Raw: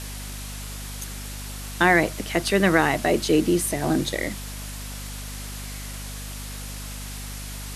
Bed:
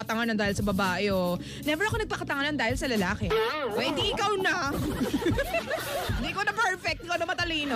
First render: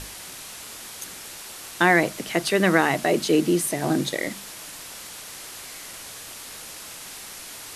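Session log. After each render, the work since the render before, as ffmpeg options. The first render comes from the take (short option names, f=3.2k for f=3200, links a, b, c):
-af "bandreject=f=50:t=h:w=6,bandreject=f=100:t=h:w=6,bandreject=f=150:t=h:w=6,bandreject=f=200:t=h:w=6,bandreject=f=250:t=h:w=6"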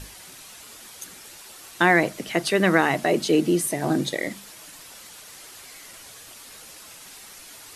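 -af "afftdn=nr=7:nf=-40"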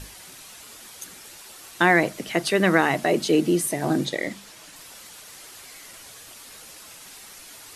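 -filter_complex "[0:a]asettb=1/sr,asplit=3[a][b][c];[a]atrim=end=4.054[d];[b]atrim=start=4.05:end=4.76,asetpts=PTS-STARTPTS,afade=t=in:d=0.004:c=qsin,afade=t=out:st=0.706:d=0.004:c=qsin,acrossover=split=7900[e][f];[f]acompressor=threshold=-52dB:ratio=4:attack=1:release=60[g];[e][g]amix=inputs=2:normalize=0[h];[c]atrim=start=4.756[i];[d][h]acrossfade=d=0.004:c1=hsin:c2=qsin[j];[j][i]acrossfade=d=0.004:c1=qsin:c2=hsin"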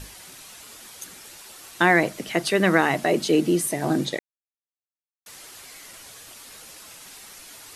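-filter_complex "[0:a]asplit=3[a][b][c];[a]atrim=end=4.19,asetpts=PTS-STARTPTS,afade=t=out:st=4.186:d=0.004:c=hsin[d];[b]atrim=start=4.19:end=5.26,asetpts=PTS-STARTPTS,volume=0[e];[c]atrim=start=5.26,asetpts=PTS-STARTPTS,afade=t=in:d=0.004:c=hsin[f];[d][e][f]concat=n=3:v=0:a=1"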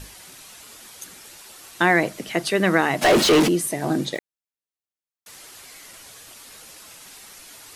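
-filter_complex "[0:a]asplit=3[a][b][c];[a]afade=t=out:st=3.01:d=0.02[d];[b]asplit=2[e][f];[f]highpass=f=720:p=1,volume=32dB,asoftclip=type=tanh:threshold=-8.5dB[g];[e][g]amix=inputs=2:normalize=0,lowpass=f=3.7k:p=1,volume=-6dB,afade=t=in:st=3.01:d=0.02,afade=t=out:st=3.47:d=0.02[h];[c]afade=t=in:st=3.47:d=0.02[i];[d][h][i]amix=inputs=3:normalize=0,asettb=1/sr,asplit=3[j][k][l];[j]atrim=end=4.154[m];[k]atrim=start=4.15:end=5.38,asetpts=PTS-STARTPTS,afade=t=in:d=0.004:c=qsin,afade=t=out:st=1.226:d=0.004:c=qsin,acrusher=bits=6:mode=log:mix=0:aa=0.000001[n];[l]atrim=start=5.376[o];[m][n]acrossfade=d=0.004:c1=hsin:c2=qsin[p];[p][o]acrossfade=d=0.004:c1=qsin:c2=hsin"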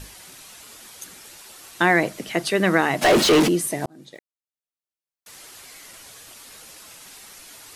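-filter_complex "[0:a]asplit=2[a][b];[a]atrim=end=3.86,asetpts=PTS-STARTPTS,afade=t=out:st=3.856:d=0.004:c=hsin[c];[b]atrim=start=3.86,asetpts=PTS-STARTPTS,afade=t=in:d=1.54[d];[c][d]concat=n=2:v=0:a=1"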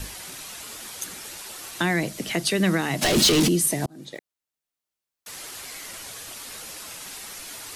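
-filter_complex "[0:a]asplit=2[a][b];[b]alimiter=limit=-14dB:level=0:latency=1:release=392,volume=-1dB[c];[a][c]amix=inputs=2:normalize=0,acrossover=split=250|3000[d][e][f];[e]acompressor=threshold=-31dB:ratio=2.5[g];[d][g][f]amix=inputs=3:normalize=0"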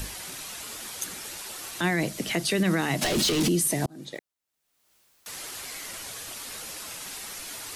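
-af "alimiter=limit=-16dB:level=0:latency=1:release=23,acompressor=mode=upward:threshold=-44dB:ratio=2.5"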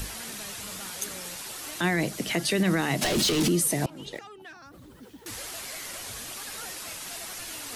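-filter_complex "[1:a]volume=-20dB[a];[0:a][a]amix=inputs=2:normalize=0"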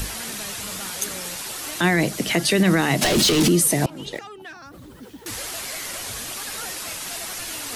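-af "volume=6.5dB"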